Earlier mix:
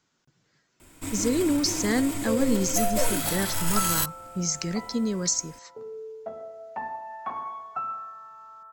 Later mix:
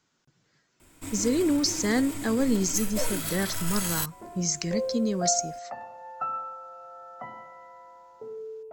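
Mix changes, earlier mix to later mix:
first sound -4.0 dB; second sound: entry +2.45 s

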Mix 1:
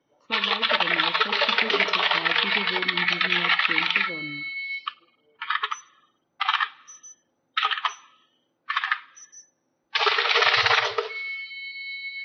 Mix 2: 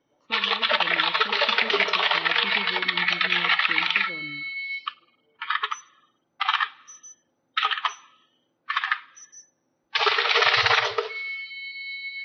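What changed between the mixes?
speech -5.0 dB; master: add bass shelf 180 Hz +3 dB

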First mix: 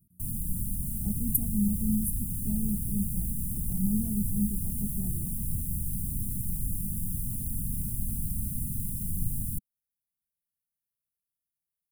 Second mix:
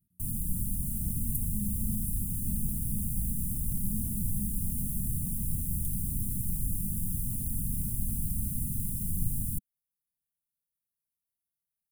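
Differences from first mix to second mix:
speech -10.5 dB; second sound: unmuted; master: add peaking EQ 2.3 kHz +6 dB 2.1 oct

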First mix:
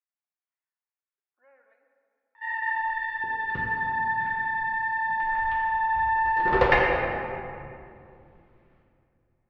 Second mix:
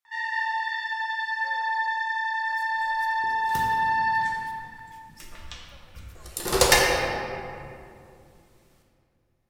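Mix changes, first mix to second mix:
speech +8.0 dB; first sound: entry -2.30 s; master: remove low-pass 2.4 kHz 24 dB/octave

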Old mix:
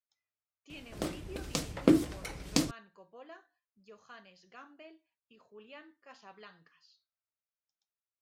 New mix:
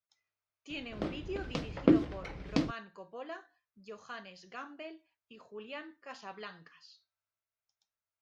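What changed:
speech +7.5 dB; background: add distance through air 240 m

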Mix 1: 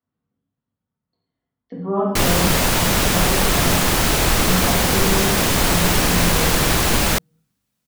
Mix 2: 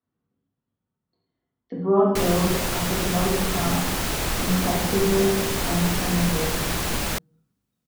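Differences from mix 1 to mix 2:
speech: add peaking EQ 360 Hz +8 dB 0.27 oct; background -8.5 dB

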